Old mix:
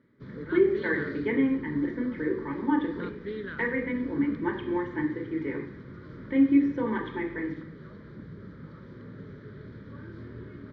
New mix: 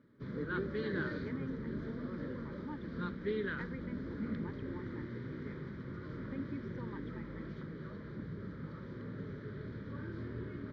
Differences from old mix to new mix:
speech -5.0 dB; reverb: off

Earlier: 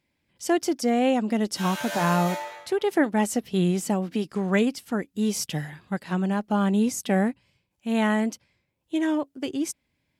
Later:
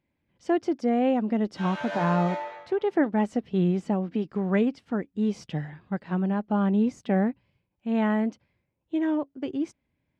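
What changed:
background +3.0 dB; master: add tape spacing loss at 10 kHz 31 dB

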